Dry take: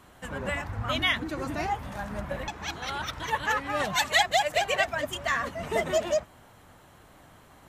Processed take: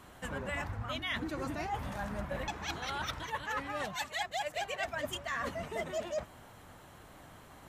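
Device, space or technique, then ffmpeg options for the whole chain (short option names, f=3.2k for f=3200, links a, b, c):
compression on the reversed sound: -af "areverse,acompressor=threshold=-33dB:ratio=10,areverse"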